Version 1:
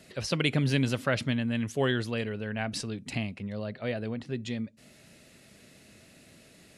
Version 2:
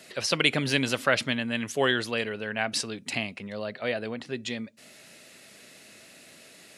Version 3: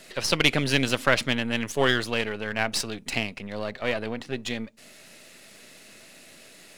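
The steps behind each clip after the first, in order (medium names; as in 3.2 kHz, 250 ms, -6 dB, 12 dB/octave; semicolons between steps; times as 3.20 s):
high-pass 590 Hz 6 dB/octave; trim +7 dB
partial rectifier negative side -7 dB; trim +4 dB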